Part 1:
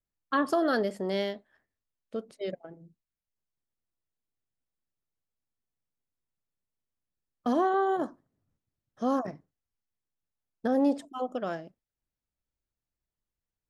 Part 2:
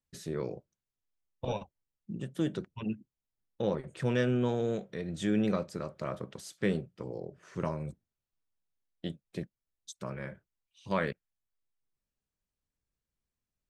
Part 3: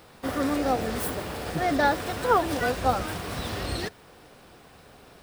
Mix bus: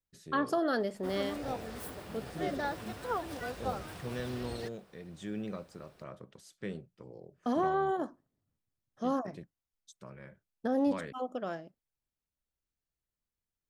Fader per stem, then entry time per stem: -4.0 dB, -10.0 dB, -13.0 dB; 0.00 s, 0.00 s, 0.80 s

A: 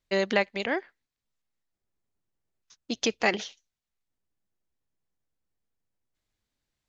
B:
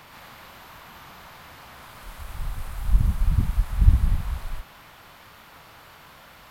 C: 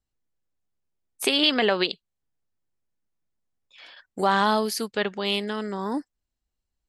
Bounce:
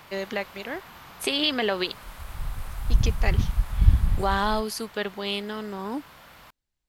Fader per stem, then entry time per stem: -5.5 dB, -1.0 dB, -3.5 dB; 0.00 s, 0.00 s, 0.00 s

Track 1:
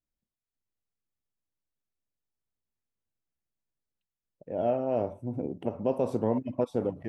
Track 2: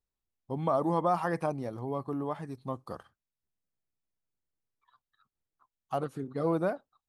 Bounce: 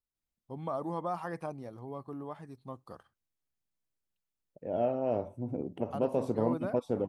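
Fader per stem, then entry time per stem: -2.5 dB, -7.5 dB; 0.15 s, 0.00 s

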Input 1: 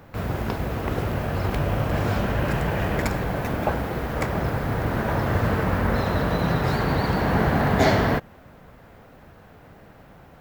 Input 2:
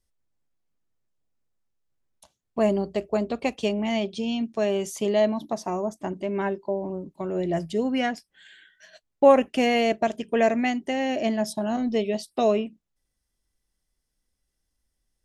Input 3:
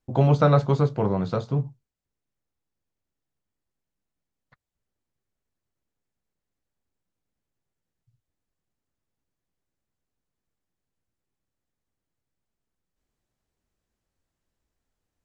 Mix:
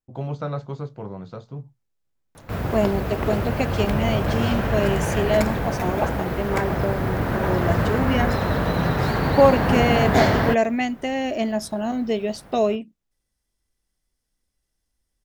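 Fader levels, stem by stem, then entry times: +1.0 dB, +1.0 dB, -10.5 dB; 2.35 s, 0.15 s, 0.00 s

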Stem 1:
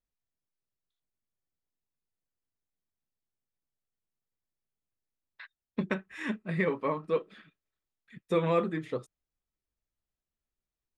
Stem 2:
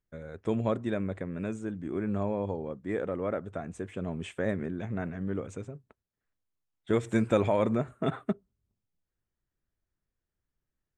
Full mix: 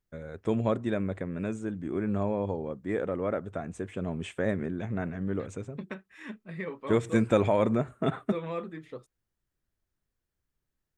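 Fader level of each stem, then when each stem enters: -8.0 dB, +1.5 dB; 0.00 s, 0.00 s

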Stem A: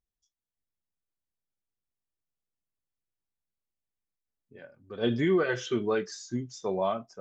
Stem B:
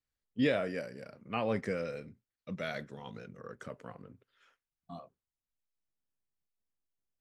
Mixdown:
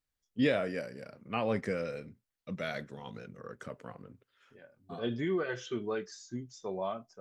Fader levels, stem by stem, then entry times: -7.0 dB, +1.0 dB; 0.00 s, 0.00 s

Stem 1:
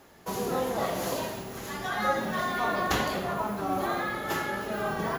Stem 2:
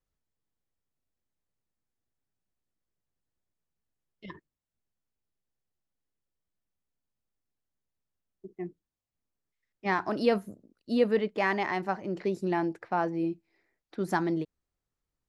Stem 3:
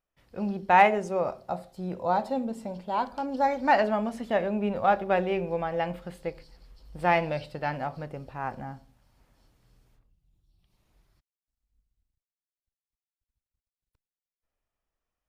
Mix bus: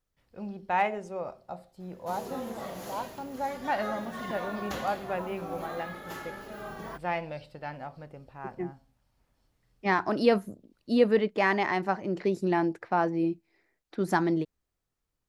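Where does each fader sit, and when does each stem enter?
-10.0 dB, +2.5 dB, -8.0 dB; 1.80 s, 0.00 s, 0.00 s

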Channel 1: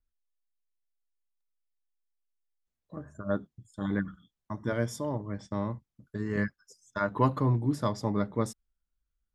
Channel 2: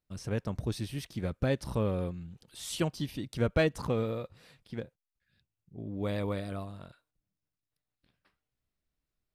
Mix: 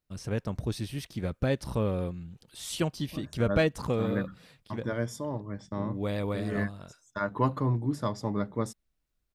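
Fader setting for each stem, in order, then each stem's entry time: -1.5 dB, +1.5 dB; 0.20 s, 0.00 s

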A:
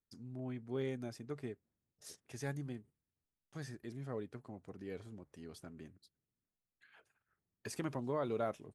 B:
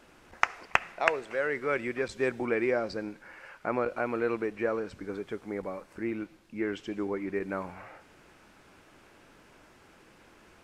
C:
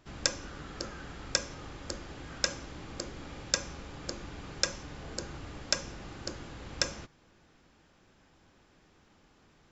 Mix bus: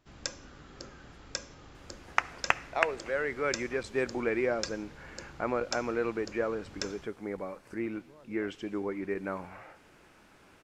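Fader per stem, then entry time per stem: -19.5 dB, -1.5 dB, -7.5 dB; 0.00 s, 1.75 s, 0.00 s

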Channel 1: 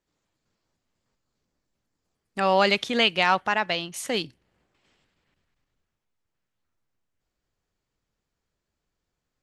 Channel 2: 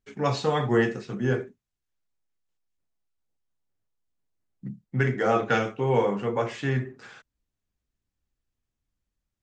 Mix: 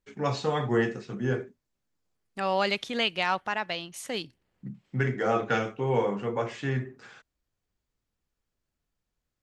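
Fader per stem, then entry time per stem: -6.0 dB, -3.0 dB; 0.00 s, 0.00 s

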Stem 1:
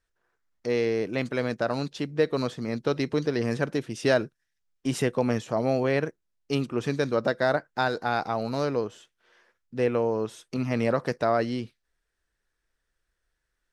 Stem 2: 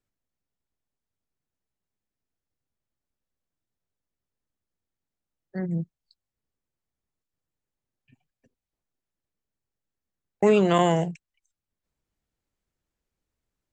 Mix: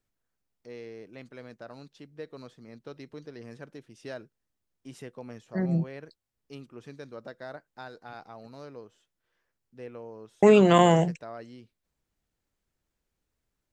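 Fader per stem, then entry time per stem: -17.5 dB, +2.0 dB; 0.00 s, 0.00 s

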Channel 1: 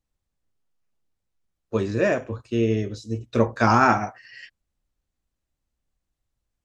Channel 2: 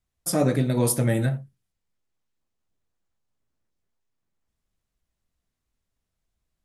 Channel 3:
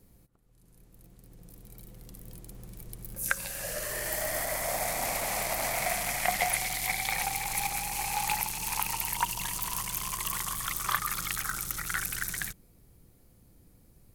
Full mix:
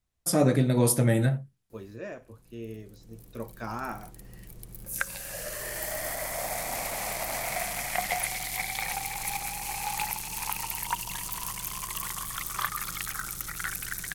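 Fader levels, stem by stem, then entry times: -18.0 dB, -0.5 dB, -1.5 dB; 0.00 s, 0.00 s, 1.70 s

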